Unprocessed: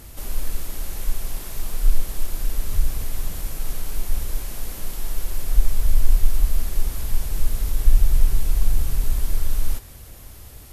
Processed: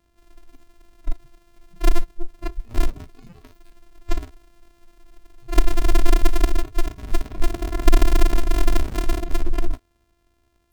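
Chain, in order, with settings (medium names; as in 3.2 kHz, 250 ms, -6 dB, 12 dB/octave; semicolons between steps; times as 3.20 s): sorted samples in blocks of 128 samples; spectral noise reduction 24 dB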